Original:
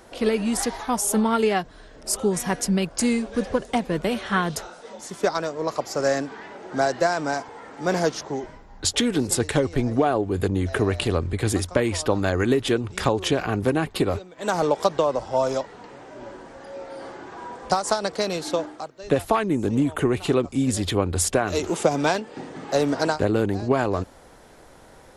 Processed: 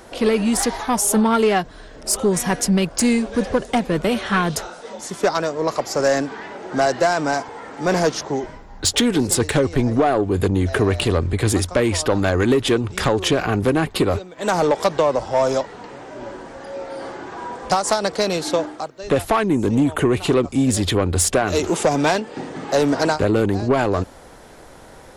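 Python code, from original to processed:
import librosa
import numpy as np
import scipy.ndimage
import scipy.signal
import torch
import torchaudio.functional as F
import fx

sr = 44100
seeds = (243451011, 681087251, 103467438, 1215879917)

y = 10.0 ** (-15.0 / 20.0) * np.tanh(x / 10.0 ** (-15.0 / 20.0))
y = y * librosa.db_to_amplitude(6.0)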